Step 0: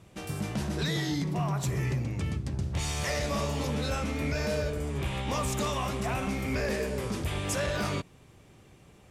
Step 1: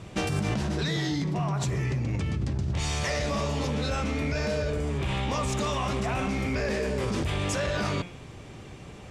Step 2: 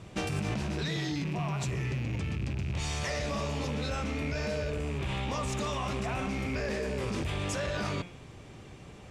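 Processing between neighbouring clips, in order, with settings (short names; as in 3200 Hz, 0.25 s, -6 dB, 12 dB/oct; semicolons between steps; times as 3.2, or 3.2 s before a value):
LPF 7200 Hz 12 dB/oct; de-hum 175.2 Hz, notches 21; in parallel at +1 dB: negative-ratio compressor -37 dBFS, ratio -0.5
rattling part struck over -29 dBFS, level -29 dBFS; gain -4.5 dB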